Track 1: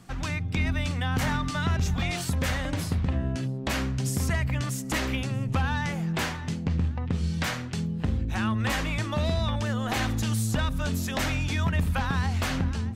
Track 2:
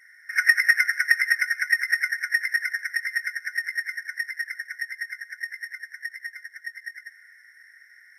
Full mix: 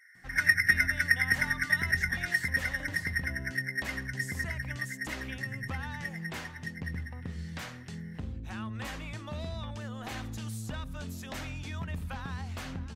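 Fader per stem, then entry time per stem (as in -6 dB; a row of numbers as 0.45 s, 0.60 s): -11.5 dB, -5.5 dB; 0.15 s, 0.00 s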